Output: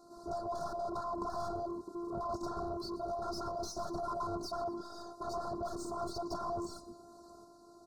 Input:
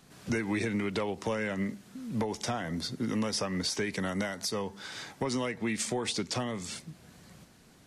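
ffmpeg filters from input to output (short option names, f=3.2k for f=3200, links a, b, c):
-filter_complex "[0:a]afwtdn=0.02,afftfilt=real='re*lt(hypot(re,im),0.0282)':imag='im*lt(hypot(re,im),0.0282)':win_size=1024:overlap=0.75,equalizer=f=380:t=o:w=1.7:g=14.5,afftfilt=real='hypot(re,im)*cos(PI*b)':imag='0':win_size=512:overlap=0.75,asplit=2[a][b];[b]highpass=f=720:p=1,volume=27dB,asoftclip=type=tanh:threshold=-29.5dB[c];[a][c]amix=inputs=2:normalize=0,lowpass=f=2.1k:p=1,volume=-6dB,asuperstop=centerf=2400:order=12:qfactor=0.85,lowshelf=f=230:t=q:w=3:g=7.5,aecho=1:1:118|236|354|472:0.126|0.0579|0.0266|0.0123,volume=2.5dB"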